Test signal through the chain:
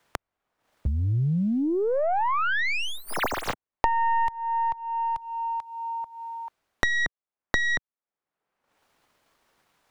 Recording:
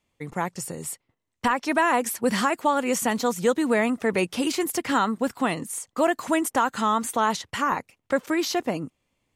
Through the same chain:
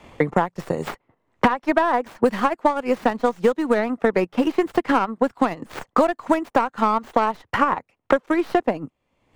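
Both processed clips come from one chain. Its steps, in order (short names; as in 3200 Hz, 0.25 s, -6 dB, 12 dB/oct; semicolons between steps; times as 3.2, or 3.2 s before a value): tracing distortion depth 0.27 ms; LPF 2200 Hz 6 dB/oct; bell 800 Hz +5.5 dB 2.4 oct; transient shaper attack +6 dB, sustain -9 dB; three-band squash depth 100%; gain -3 dB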